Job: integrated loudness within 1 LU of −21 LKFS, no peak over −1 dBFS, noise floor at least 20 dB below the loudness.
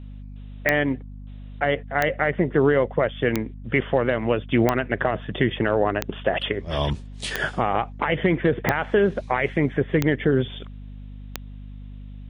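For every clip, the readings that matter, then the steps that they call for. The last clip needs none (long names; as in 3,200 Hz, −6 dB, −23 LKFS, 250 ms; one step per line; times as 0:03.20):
number of clicks 9; mains hum 50 Hz; hum harmonics up to 250 Hz; level of the hum −36 dBFS; integrated loudness −23.5 LKFS; sample peak −5.0 dBFS; target loudness −21.0 LKFS
→ click removal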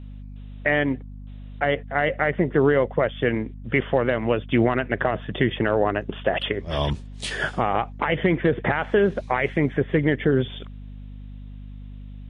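number of clicks 0; mains hum 50 Hz; hum harmonics up to 250 Hz; level of the hum −36 dBFS
→ hum removal 50 Hz, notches 5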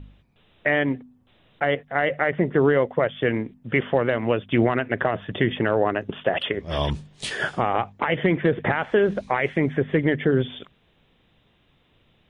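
mains hum none found; integrated loudness −23.5 LKFS; sample peak −8.0 dBFS; target loudness −21.0 LKFS
→ level +2.5 dB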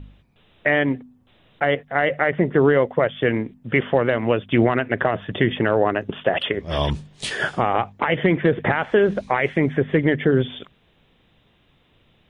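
integrated loudness −21.0 LKFS; sample peak −5.5 dBFS; background noise floor −60 dBFS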